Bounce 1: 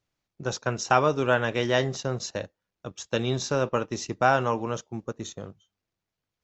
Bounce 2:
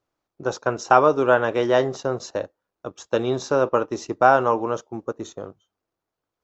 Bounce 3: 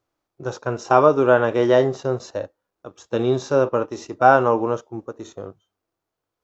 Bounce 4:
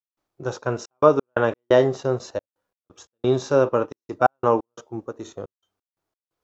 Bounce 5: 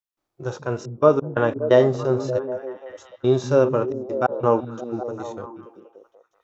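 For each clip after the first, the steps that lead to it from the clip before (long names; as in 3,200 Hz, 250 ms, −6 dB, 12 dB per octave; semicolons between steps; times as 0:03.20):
flat-topped bell 630 Hz +9.5 dB 2.7 octaves; level −3 dB
harmonic and percussive parts rebalanced percussive −10 dB; level +5 dB
gate pattern ".xxxx.x.x" 88 BPM −60 dB
echo through a band-pass that steps 192 ms, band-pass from 160 Hz, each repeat 0.7 octaves, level −4 dB; harmonic and percussive parts rebalanced harmonic +7 dB; level −4.5 dB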